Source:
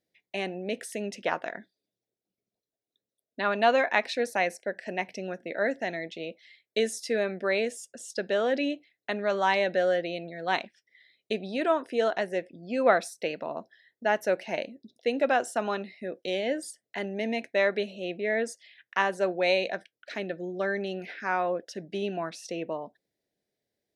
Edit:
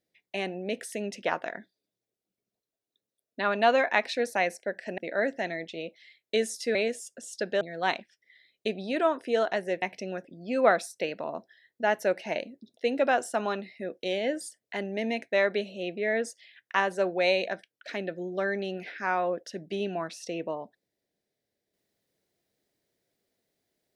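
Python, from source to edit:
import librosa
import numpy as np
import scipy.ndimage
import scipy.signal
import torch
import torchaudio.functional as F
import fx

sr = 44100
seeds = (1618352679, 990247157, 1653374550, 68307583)

y = fx.edit(x, sr, fx.move(start_s=4.98, length_s=0.43, to_s=12.47),
    fx.cut(start_s=7.18, length_s=0.34),
    fx.cut(start_s=8.38, length_s=1.88), tone=tone)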